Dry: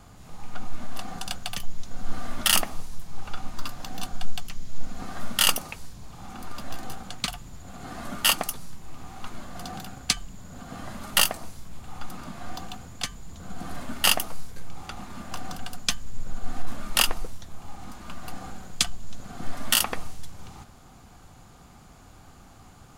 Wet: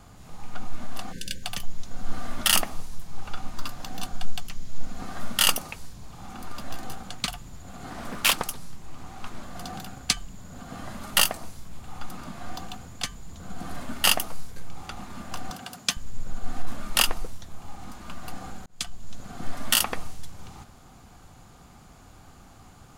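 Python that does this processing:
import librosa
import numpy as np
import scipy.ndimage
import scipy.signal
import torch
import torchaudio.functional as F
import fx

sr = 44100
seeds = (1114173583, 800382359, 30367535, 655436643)

y = fx.spec_erase(x, sr, start_s=1.12, length_s=0.31, low_hz=580.0, high_hz=1500.0)
y = fx.doppler_dist(y, sr, depth_ms=0.49, at=(7.9, 9.43))
y = fx.highpass(y, sr, hz=140.0, slope=12, at=(15.5, 15.97))
y = fx.edit(y, sr, fx.fade_in_span(start_s=18.66, length_s=0.65, curve='qsin'), tone=tone)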